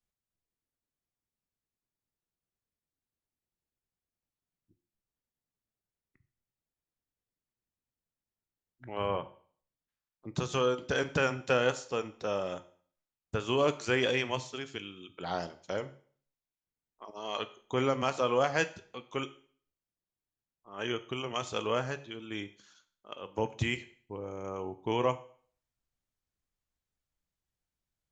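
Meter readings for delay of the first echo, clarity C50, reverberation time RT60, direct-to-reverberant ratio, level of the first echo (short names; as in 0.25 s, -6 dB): none, 16.5 dB, 0.50 s, 11.5 dB, none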